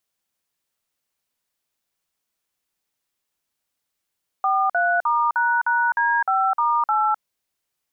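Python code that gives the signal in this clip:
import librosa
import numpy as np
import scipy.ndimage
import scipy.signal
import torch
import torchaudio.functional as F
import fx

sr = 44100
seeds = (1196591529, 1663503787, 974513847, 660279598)

y = fx.dtmf(sr, digits='43*##D5*8', tone_ms=257, gap_ms=49, level_db=-19.5)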